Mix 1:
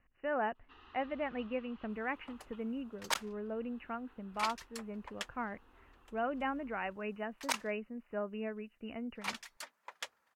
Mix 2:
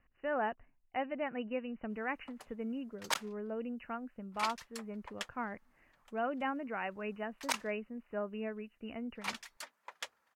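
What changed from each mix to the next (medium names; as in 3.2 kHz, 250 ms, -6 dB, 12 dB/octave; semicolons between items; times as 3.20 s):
first sound: muted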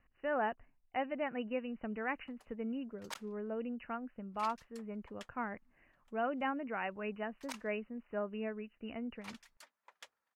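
background -11.5 dB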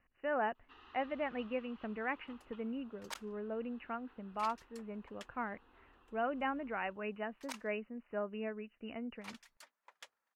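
first sound: unmuted; master: add bass shelf 140 Hz -6 dB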